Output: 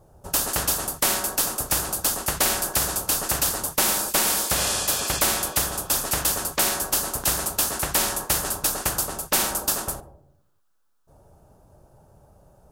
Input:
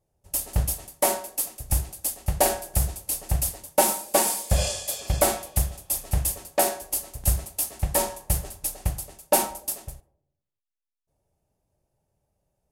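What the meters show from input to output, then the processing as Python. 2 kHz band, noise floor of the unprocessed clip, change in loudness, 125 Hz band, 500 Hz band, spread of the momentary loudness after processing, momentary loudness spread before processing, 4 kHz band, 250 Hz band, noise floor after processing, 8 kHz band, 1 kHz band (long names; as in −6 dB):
+8.0 dB, −85 dBFS, +3.5 dB, −7.5 dB, −3.5 dB, 4 LU, 7 LU, +8.5 dB, +1.5 dB, −64 dBFS, +4.5 dB, +1.0 dB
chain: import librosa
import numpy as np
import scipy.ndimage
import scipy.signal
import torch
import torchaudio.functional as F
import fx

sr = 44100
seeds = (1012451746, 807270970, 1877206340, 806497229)

y = fx.high_shelf_res(x, sr, hz=1700.0, db=-6.0, q=3.0)
y = fx.spectral_comp(y, sr, ratio=4.0)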